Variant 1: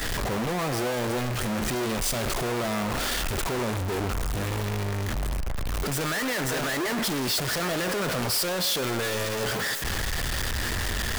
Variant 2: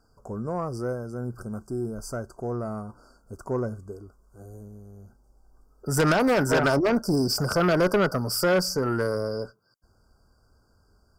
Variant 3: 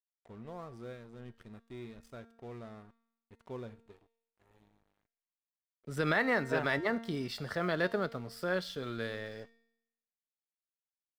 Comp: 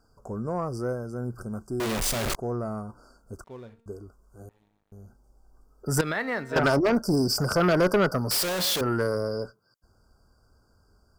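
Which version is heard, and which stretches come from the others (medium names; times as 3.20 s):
2
1.80–2.35 s: from 1
3.44–3.86 s: from 3
4.49–4.92 s: from 3
6.01–6.56 s: from 3
8.31–8.81 s: from 1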